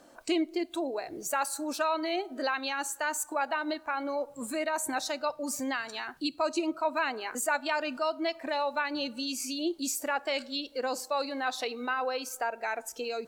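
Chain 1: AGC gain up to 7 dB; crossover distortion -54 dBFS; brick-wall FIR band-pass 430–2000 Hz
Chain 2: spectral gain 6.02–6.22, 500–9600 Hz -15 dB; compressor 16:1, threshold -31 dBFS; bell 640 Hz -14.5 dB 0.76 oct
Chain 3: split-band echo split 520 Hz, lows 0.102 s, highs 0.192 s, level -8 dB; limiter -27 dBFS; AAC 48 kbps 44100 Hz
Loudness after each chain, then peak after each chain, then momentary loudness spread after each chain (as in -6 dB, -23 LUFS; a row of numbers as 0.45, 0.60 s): -27.0, -38.5, -35.5 LUFS; -10.0, -23.0, -23.0 dBFS; 11, 5, 2 LU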